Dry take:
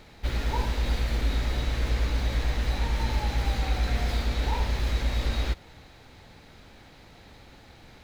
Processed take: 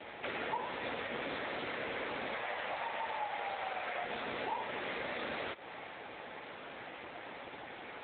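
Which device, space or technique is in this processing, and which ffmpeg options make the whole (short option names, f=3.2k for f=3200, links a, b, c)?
voicemail: -filter_complex "[0:a]asettb=1/sr,asplit=3[a][b][c];[a]atrim=end=2.344[d];[b]atrim=start=2.34:end=4.03,asetpts=PTS-STARTPTS,afade=t=in:d=0.004:c=qsin,afade=t=out:st=1.686:d=0.004:c=qsin,lowshelf=f=410:t=q:w=1.5:g=-10.5[e];[c]atrim=start=4.026[f];[d][e]acrossfade=d=0.004:c1=hsin:c2=qsin[g];[g][f]acrossfade=d=0.004:c1=qsin:c2=hsin,highpass=390,lowpass=3.3k,acompressor=threshold=-44dB:ratio=10,volume=10.5dB" -ar 8000 -c:a libopencore_amrnb -b:a 7950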